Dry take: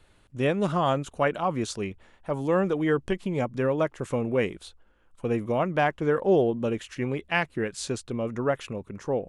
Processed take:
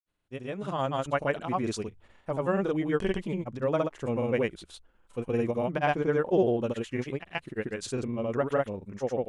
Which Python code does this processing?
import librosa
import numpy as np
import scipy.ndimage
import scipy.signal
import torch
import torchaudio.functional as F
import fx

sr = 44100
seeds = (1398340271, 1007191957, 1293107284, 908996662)

y = fx.fade_in_head(x, sr, length_s=1.26)
y = fx.granulator(y, sr, seeds[0], grain_ms=100.0, per_s=20.0, spray_ms=100.0, spread_st=0)
y = y * librosa.db_to_amplitude(-1.5)